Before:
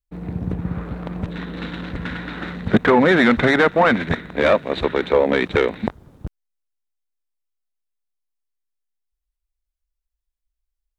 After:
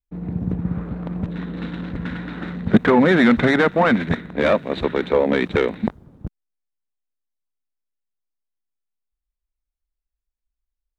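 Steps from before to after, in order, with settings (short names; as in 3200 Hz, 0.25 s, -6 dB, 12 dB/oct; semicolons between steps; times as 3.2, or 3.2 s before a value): bell 200 Hz +5.5 dB 1.3 oct; mismatched tape noise reduction decoder only; gain -2.5 dB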